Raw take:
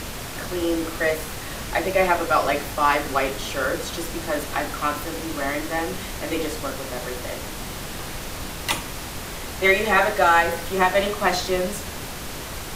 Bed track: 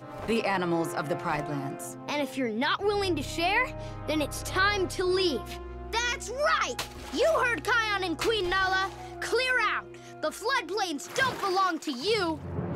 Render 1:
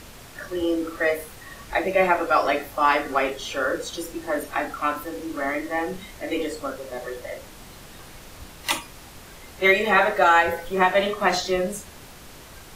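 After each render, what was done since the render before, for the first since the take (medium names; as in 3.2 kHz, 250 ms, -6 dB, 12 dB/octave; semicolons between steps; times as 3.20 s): noise print and reduce 11 dB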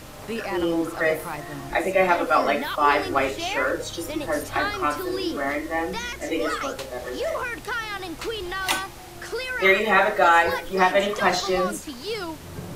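add bed track -3.5 dB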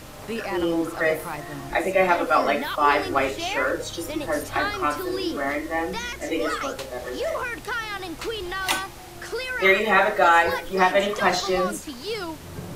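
no audible change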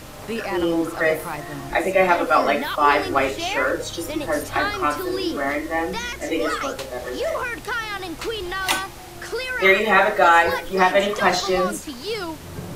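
trim +2.5 dB; peak limiter -2 dBFS, peak gain reduction 1 dB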